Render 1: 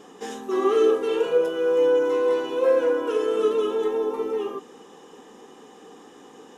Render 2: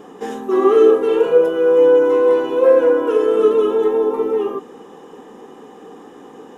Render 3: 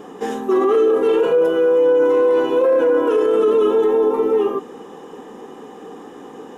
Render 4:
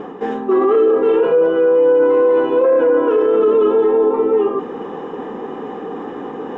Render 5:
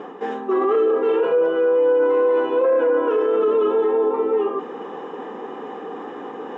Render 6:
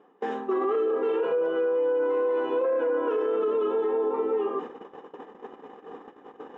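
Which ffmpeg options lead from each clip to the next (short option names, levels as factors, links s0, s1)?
-af "equalizer=f=5600:t=o:w=2.5:g=-11,volume=2.66"
-af "alimiter=limit=0.266:level=0:latency=1:release=21,volume=1.33"
-af "lowpass=2300,areverse,acompressor=mode=upward:threshold=0.1:ratio=2.5,areverse,volume=1.26"
-af "highpass=f=440:p=1,volume=0.794"
-af "agate=range=0.1:threshold=0.0316:ratio=16:detection=peak,acompressor=threshold=0.1:ratio=3,volume=0.668"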